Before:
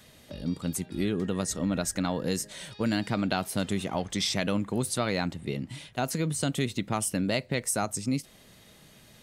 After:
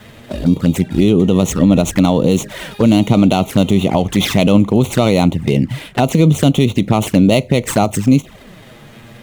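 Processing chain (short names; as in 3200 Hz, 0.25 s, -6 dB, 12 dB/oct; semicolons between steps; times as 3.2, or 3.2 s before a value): median filter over 9 samples; envelope flanger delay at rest 10.5 ms, full sweep at -27.5 dBFS; maximiser +21.5 dB; gain -1 dB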